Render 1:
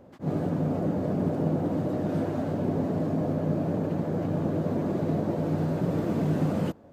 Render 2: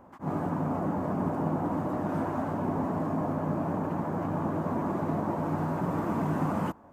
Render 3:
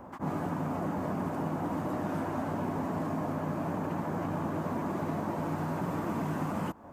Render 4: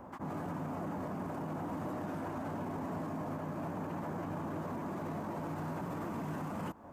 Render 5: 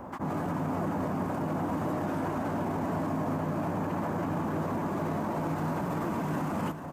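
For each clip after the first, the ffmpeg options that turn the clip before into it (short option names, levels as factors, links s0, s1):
-af "equalizer=f=125:t=o:w=1:g=-6,equalizer=f=500:t=o:w=1:g=-8,equalizer=f=1000:t=o:w=1:g=12,equalizer=f=4000:t=o:w=1:g=-9"
-filter_complex "[0:a]acrossover=split=880|1800[s0][s1][s2];[s0]acompressor=threshold=0.0112:ratio=4[s3];[s1]acompressor=threshold=0.00251:ratio=4[s4];[s2]acompressor=threshold=0.00178:ratio=4[s5];[s3][s4][s5]amix=inputs=3:normalize=0,volume=2.11"
-af "alimiter=level_in=1.78:limit=0.0631:level=0:latency=1:release=24,volume=0.562,volume=0.75"
-af "aecho=1:1:440:0.316,volume=2.37"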